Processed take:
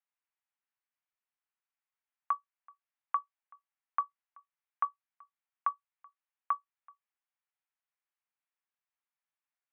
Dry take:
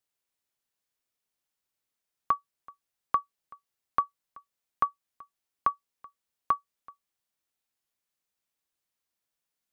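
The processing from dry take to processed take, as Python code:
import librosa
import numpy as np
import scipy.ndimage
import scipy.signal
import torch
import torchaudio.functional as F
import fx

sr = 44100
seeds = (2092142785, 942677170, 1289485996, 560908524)

y = scipy.signal.sosfilt(scipy.signal.cheby2(4, 60, 220.0, 'highpass', fs=sr, output='sos'), x)
y = fx.level_steps(y, sr, step_db=9)
y = scipy.signal.sosfilt(scipy.signal.butter(4, 2600.0, 'lowpass', fs=sr, output='sos'), y)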